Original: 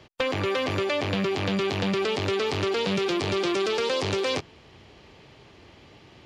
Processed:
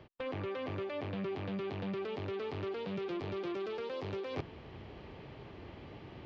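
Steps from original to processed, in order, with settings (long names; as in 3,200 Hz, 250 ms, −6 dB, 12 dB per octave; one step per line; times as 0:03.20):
high-shelf EQ 3,500 Hz +9.5 dB
reversed playback
downward compressor 12 to 1, threshold −36 dBFS, peak gain reduction 17 dB
reversed playback
head-to-tape spacing loss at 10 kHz 43 dB
level +4 dB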